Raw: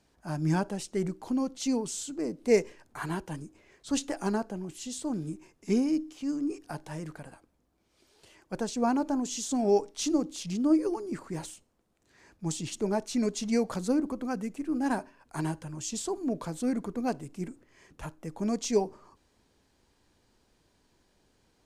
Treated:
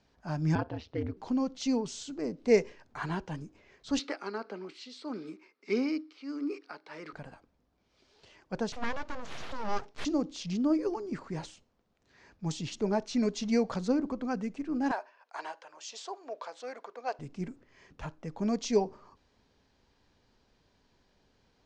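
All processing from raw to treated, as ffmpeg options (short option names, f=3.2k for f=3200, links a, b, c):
-filter_complex "[0:a]asettb=1/sr,asplit=3[a][b][c];[a]atrim=end=0.554[d];[b]atrim=start=0.55:end=1.17,asetpts=PTS-STARTPTS,afade=t=in:d=0.004:c=qsin,afade=t=out:st=0.616:d=0.004:c=qsin,lowpass=f=4.1k:w=0.5412,lowpass=f=4.1k:w=1.3066,aeval=exprs='val(0)*sin(2*PI*80*n/s)':c=same[e];[c]atrim=start=1.166[f];[d][e]acrossfade=d=0.004:c1=hsin:c2=qsin[g];[g][f]acrossfade=d=0.004:c1=qsin:c2=hsin,asettb=1/sr,asplit=3[h][i][j];[h]atrim=end=3.994[k];[i]atrim=start=3.99:end=7.13,asetpts=PTS-STARTPTS,afade=t=in:d=0.004:c=qsin,afade=t=out:st=3.136:d=0.004:c=qsin,highpass=f=260:w=0.5412,highpass=f=260:w=1.3066,equalizer=f=420:t=q:w=4:g=4,equalizer=f=720:t=q:w=4:g=-4,equalizer=f=1.3k:t=q:w=4:g=10,equalizer=f=2.2k:t=q:w=4:g=10,equalizer=f=4.3k:t=q:w=4:g=9,equalizer=f=6.8k:t=q:w=4:g=-9,lowpass=f=9.3k:w=0.5412,lowpass=f=9.3k:w=1.3066,tremolo=f=1.6:d=0.62[l];[j]atrim=start=7.126[m];[k][l]acrossfade=d=0.004:c1=hsin:c2=qsin[n];[n][m]acrossfade=d=0.004:c1=qsin:c2=hsin,asettb=1/sr,asplit=3[o][p][q];[o]atrim=end=8.724[r];[p]atrim=start=8.72:end=10.05,asetpts=PTS-STARTPTS,afade=t=in:d=0.004:c=qsin,afade=t=out:st=1.326:d=0.004:c=qsin,equalizer=f=250:t=o:w=2.7:g=-6.5,aeval=exprs='abs(val(0))':c=same[s];[q]atrim=start=10.046[t];[r][s]acrossfade=d=0.004:c1=hsin:c2=qsin[u];[u][t]acrossfade=d=0.004:c1=qsin:c2=hsin,asettb=1/sr,asplit=3[v][w][x];[v]atrim=end=14.914[y];[w]atrim=start=14.91:end=17.19,asetpts=PTS-STARTPTS,afade=t=in:d=0.004:c=qsin,afade=t=out:st=2.276:d=0.004:c=qsin,highpass=f=530:w=0.5412,highpass=f=530:w=1.3066,highshelf=f=8.6k:g=-11[z];[x]atrim=start=17.186[aa];[y][z]acrossfade=d=0.004:c1=hsin:c2=qsin[ab];[ab][aa]acrossfade=d=0.004:c1=qsin:c2=hsin,lowpass=f=5.8k:w=0.5412,lowpass=f=5.8k:w=1.3066,equalizer=f=330:t=o:w=0.2:g=-6.5"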